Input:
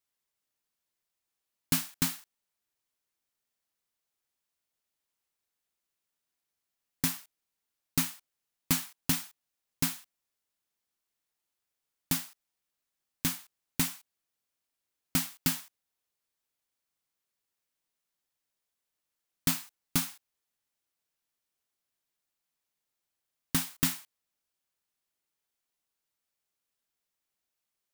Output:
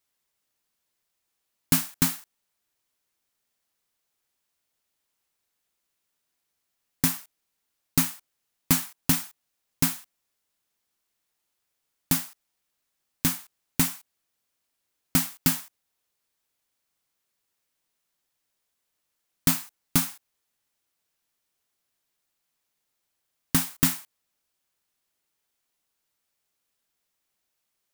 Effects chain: dynamic bell 3.5 kHz, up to -4 dB, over -48 dBFS, Q 0.76; trim +6.5 dB

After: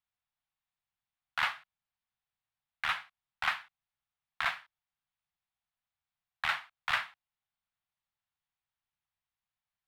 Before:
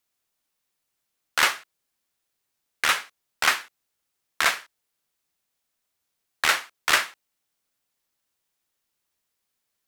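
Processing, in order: FFT filter 130 Hz 0 dB, 190 Hz -5 dB, 410 Hz -29 dB, 740 Hz -3 dB, 3.6 kHz -7 dB, 6.2 kHz -21 dB; trim -4.5 dB

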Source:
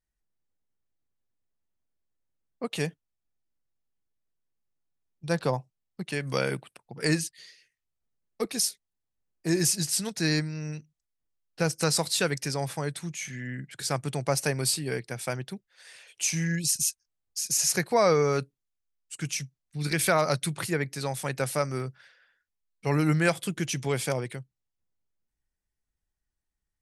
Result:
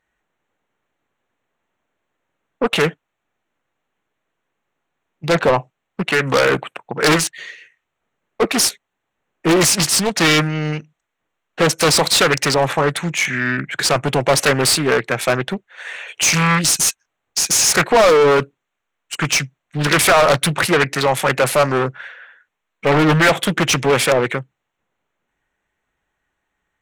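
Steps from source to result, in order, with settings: local Wiener filter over 9 samples; overdrive pedal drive 26 dB, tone 6.8 kHz, clips at -9.5 dBFS; loudspeaker Doppler distortion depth 0.62 ms; trim +5 dB

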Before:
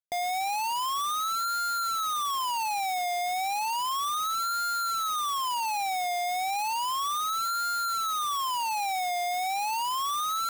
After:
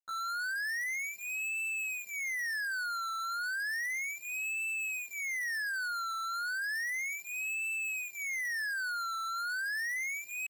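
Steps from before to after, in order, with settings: resonances exaggerated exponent 1.5; pitch shift +11 st; comb of notches 1.2 kHz; trim -5 dB

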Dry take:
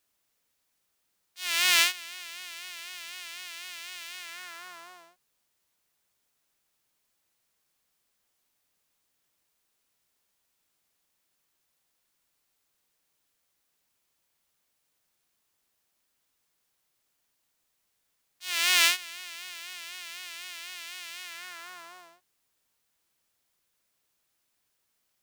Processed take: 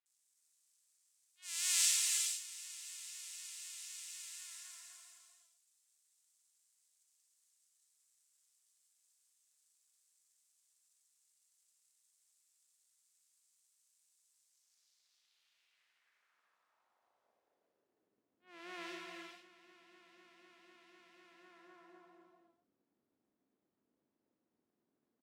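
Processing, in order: crackle 540 per s -57 dBFS; band-pass sweep 7.9 kHz -> 270 Hz, 14.29–18.21 s; bands offset in time lows, highs 60 ms, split 2.8 kHz; gated-style reverb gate 480 ms flat, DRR -1 dB

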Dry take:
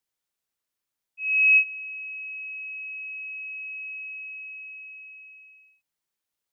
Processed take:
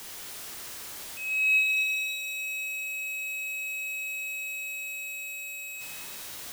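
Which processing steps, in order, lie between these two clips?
jump at every zero crossing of -31.5 dBFS; pitch-shifted reverb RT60 1.7 s, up +7 st, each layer -8 dB, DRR 1.5 dB; trim -4.5 dB

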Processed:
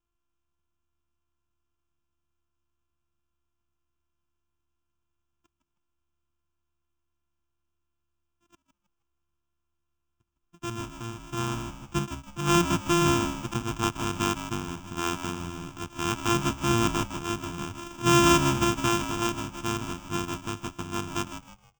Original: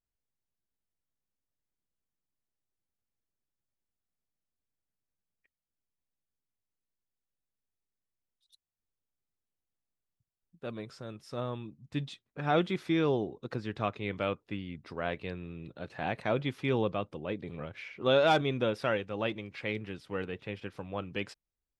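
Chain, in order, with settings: sorted samples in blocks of 128 samples; static phaser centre 2.9 kHz, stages 8; frequency-shifting echo 158 ms, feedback 32%, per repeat -72 Hz, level -10 dB; trim +8.5 dB

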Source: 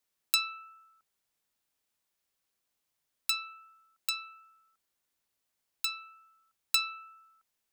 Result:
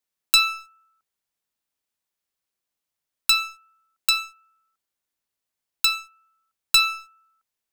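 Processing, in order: waveshaping leveller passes 3; trim +3 dB

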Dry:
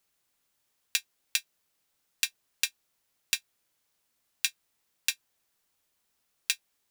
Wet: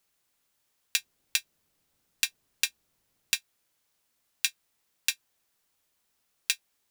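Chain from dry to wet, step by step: 0.98–3.35 s: bass shelf 410 Hz +11 dB; trim +1 dB

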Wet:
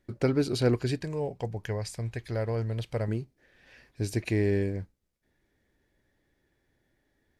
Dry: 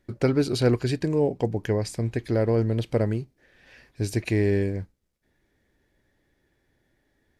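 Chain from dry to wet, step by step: 1.01–3.08 s: peaking EQ 290 Hz -11 dB 1.3 oct; trim -3.5 dB

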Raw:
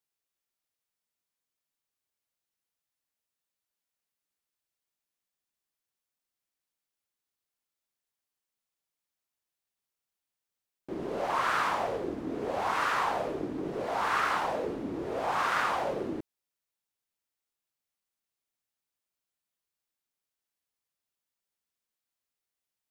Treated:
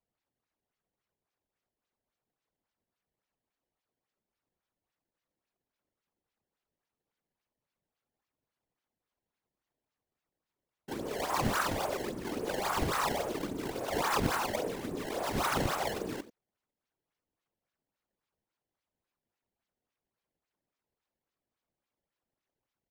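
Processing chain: speakerphone echo 90 ms, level -13 dB; decimation with a swept rate 21×, swing 160% 3.6 Hz; whisper effect; trim -2.5 dB

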